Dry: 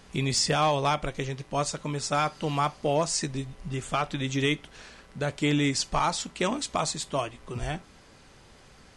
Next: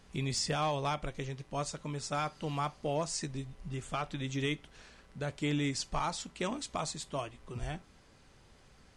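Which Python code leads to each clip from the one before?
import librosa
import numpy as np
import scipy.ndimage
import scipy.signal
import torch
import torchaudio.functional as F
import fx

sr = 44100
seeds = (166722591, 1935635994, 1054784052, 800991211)

y = fx.low_shelf(x, sr, hz=150.0, db=4.5)
y = F.gain(torch.from_numpy(y), -8.5).numpy()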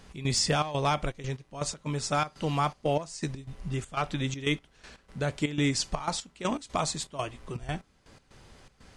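y = fx.step_gate(x, sr, bpm=121, pattern='x.xxx.xxx.x..', floor_db=-12.0, edge_ms=4.5)
y = F.gain(torch.from_numpy(y), 7.0).numpy()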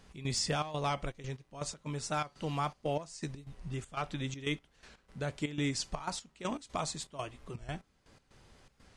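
y = fx.record_warp(x, sr, rpm=45.0, depth_cents=100.0)
y = F.gain(torch.from_numpy(y), -6.5).numpy()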